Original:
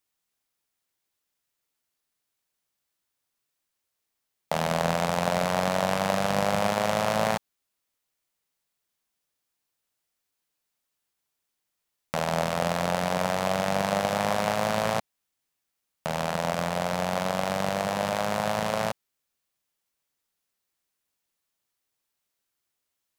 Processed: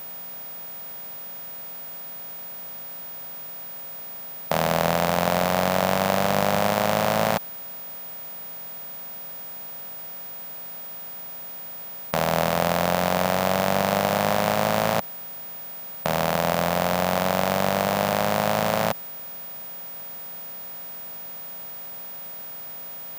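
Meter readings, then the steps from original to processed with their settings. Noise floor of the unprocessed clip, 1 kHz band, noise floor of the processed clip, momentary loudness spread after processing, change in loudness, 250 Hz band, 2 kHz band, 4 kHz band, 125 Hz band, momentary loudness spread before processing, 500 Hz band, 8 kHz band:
−82 dBFS, +4.0 dB, −37 dBFS, 12 LU, +1.0 dB, +4.0 dB, +4.0 dB, +4.0 dB, +4.0 dB, 5 LU, +4.0 dB, +4.5 dB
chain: compressor on every frequency bin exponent 0.4
steady tone 15,000 Hz −34 dBFS

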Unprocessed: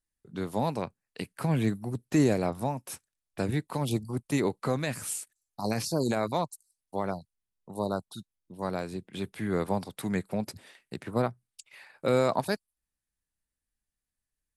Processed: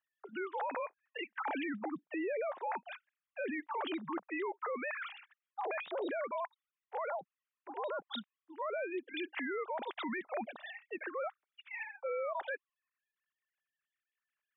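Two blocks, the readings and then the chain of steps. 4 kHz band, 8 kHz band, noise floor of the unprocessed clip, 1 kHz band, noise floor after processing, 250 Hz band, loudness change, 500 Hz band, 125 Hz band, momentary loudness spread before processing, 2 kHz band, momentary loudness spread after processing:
−6.5 dB, below −40 dB, below −85 dBFS, −4.0 dB, below −85 dBFS, −12.5 dB, −8.5 dB, −7.5 dB, below −30 dB, 17 LU, 0.0 dB, 9 LU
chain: three sine waves on the formant tracks
high-pass filter 850 Hz 12 dB per octave
spectral tilt −2 dB per octave
reversed playback
downward compressor 6 to 1, threshold −40 dBFS, peak gain reduction 13.5 dB
reversed playback
brickwall limiter −42.5 dBFS, peak gain reduction 11 dB
level +12 dB

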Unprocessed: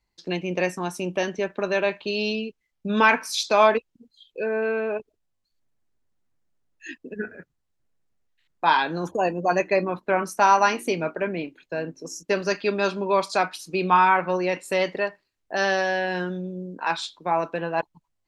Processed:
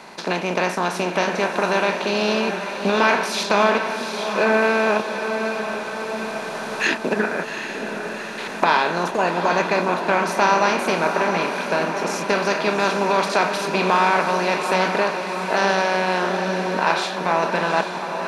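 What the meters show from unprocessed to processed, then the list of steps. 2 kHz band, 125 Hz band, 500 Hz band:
+5.5 dB, +4.0 dB, +4.0 dB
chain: compressor on every frequency bin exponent 0.4
camcorder AGC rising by 6.1 dB per second
on a send: feedback delay with all-pass diffusion 775 ms, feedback 62%, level −7 dB
on the sum: level −4 dB

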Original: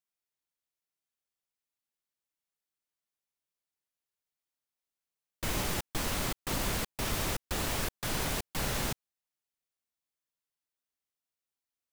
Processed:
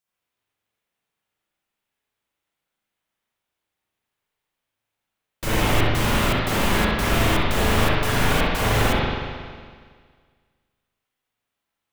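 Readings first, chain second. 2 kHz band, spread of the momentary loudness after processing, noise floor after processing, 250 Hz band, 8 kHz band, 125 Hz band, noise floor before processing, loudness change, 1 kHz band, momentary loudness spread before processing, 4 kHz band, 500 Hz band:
+14.5 dB, 9 LU, −83 dBFS, +14.5 dB, +4.5 dB, +15.0 dB, below −85 dBFS, +12.0 dB, +15.0 dB, 2 LU, +11.0 dB, +15.0 dB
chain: flutter between parallel walls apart 11.1 metres, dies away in 0.22 s
spring reverb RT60 1.8 s, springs 37/46 ms, chirp 75 ms, DRR −9.5 dB
level +4.5 dB

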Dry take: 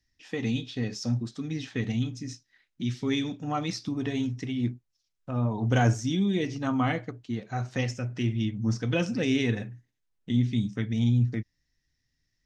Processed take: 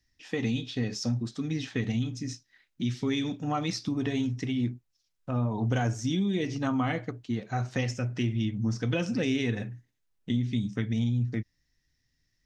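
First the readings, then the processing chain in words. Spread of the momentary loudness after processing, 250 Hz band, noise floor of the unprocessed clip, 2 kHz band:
8 LU, −1.0 dB, −78 dBFS, −1.5 dB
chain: downward compressor, threshold −26 dBFS, peak gain reduction 8.5 dB
level +2 dB

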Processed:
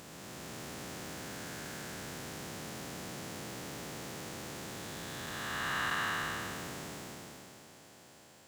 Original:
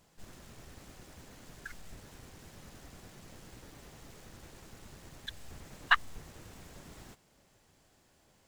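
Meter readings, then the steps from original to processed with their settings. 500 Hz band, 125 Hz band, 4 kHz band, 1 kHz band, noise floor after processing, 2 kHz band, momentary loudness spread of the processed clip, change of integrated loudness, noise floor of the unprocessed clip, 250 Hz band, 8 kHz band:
+10.5 dB, +6.0 dB, +2.5 dB, +1.0 dB, −57 dBFS, −1.0 dB, 16 LU, −4.0 dB, −68 dBFS, +10.0 dB, +11.0 dB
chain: spectrum smeared in time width 744 ms
high-pass filter 140 Hz 12 dB per octave
level +13 dB

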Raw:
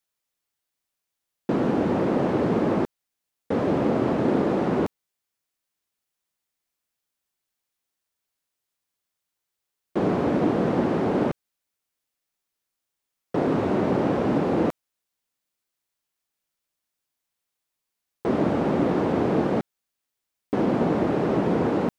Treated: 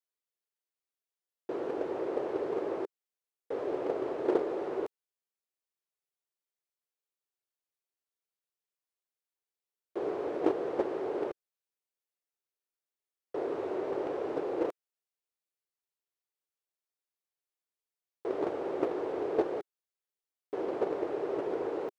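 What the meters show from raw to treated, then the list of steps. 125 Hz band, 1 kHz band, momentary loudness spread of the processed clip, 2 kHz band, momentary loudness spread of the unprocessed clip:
−26.5 dB, −11.0 dB, 9 LU, −12.5 dB, 6 LU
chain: noise gate −18 dBFS, range −17 dB
low shelf with overshoot 290 Hz −10.5 dB, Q 3
level +3.5 dB

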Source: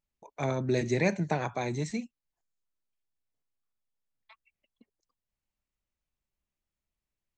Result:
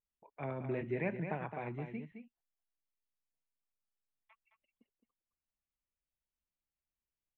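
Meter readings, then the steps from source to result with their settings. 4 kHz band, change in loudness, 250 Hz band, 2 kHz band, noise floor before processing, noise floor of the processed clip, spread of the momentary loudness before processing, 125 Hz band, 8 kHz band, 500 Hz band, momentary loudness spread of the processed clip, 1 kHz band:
below −20 dB, −9.0 dB, −9.0 dB, −9.0 dB, below −85 dBFS, below −85 dBFS, 10 LU, −9.5 dB, below −30 dB, −9.0 dB, 10 LU, −8.5 dB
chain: elliptic low-pass filter 3,000 Hz, stop band 40 dB
on a send: single-tap delay 215 ms −8 dB
on the sum: level −9 dB

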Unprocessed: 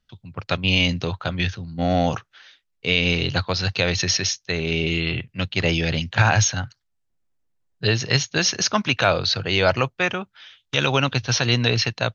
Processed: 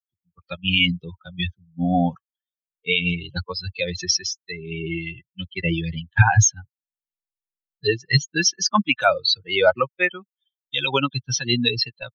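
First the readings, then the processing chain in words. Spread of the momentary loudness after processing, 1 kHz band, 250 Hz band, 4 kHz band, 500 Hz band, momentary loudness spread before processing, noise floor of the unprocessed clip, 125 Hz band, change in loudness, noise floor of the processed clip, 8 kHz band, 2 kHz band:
12 LU, 0.0 dB, −0.5 dB, −1.0 dB, −1.0 dB, 8 LU, −73 dBFS, −1.5 dB, −0.5 dB, below −85 dBFS, can't be measured, −1.0 dB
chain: spectral dynamics exaggerated over time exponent 3
level +7 dB

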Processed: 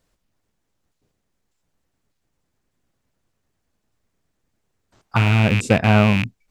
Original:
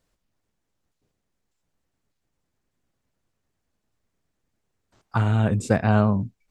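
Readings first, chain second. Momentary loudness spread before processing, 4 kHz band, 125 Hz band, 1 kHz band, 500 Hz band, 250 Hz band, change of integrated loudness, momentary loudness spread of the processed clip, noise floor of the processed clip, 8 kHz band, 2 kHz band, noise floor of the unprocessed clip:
7 LU, +14.5 dB, +4.0 dB, +4.5 dB, +4.0 dB, +4.0 dB, +5.0 dB, 7 LU, −74 dBFS, +5.0 dB, +10.0 dB, −78 dBFS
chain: loose part that buzzes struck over −26 dBFS, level −15 dBFS
level +4 dB

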